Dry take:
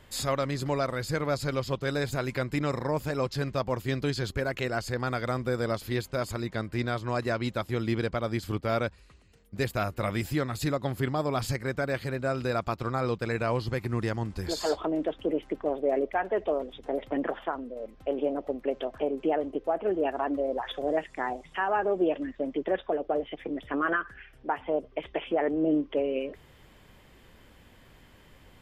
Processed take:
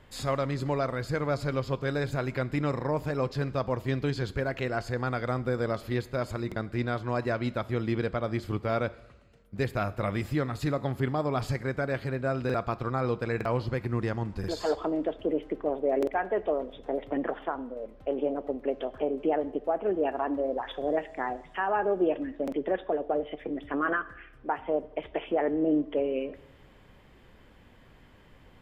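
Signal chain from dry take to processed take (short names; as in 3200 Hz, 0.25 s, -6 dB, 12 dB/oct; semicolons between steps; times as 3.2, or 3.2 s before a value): high shelf 4300 Hz -11 dB; two-slope reverb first 0.78 s, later 2.2 s, DRR 15 dB; stuck buffer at 6.47/12.45/13.36/14.39/15.98/22.43, samples 2048, times 1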